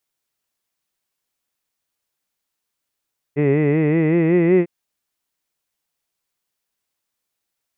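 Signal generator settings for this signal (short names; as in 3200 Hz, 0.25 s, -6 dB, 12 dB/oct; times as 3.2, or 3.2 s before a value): formant-synthesis vowel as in hid, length 1.30 s, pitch 140 Hz, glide +4.5 st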